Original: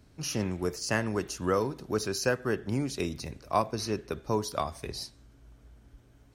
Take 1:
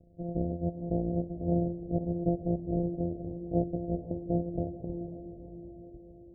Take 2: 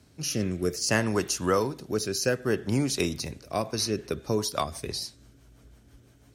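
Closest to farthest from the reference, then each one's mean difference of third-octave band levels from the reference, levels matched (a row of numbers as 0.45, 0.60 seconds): 2, 1; 2.5, 16.0 decibels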